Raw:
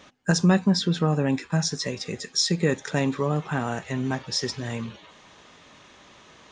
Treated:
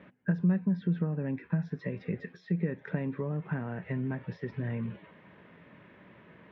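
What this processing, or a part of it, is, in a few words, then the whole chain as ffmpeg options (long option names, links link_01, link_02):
bass amplifier: -af "acompressor=threshold=-30dB:ratio=5,highpass=75,equalizer=frequency=120:width_type=q:width=4:gain=4,equalizer=frequency=180:width_type=q:width=4:gain=8,equalizer=frequency=780:width_type=q:width=4:gain=-8,equalizer=frequency=1200:width_type=q:width=4:gain=-9,lowpass=frequency=2100:width=0.5412,lowpass=frequency=2100:width=1.3066,volume=-1dB"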